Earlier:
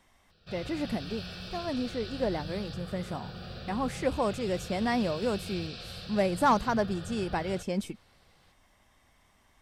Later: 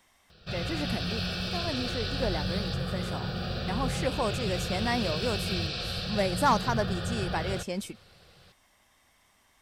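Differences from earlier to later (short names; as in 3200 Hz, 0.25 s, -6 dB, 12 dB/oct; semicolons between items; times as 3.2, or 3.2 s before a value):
speech: add tilt +1.5 dB/oct; background +9.0 dB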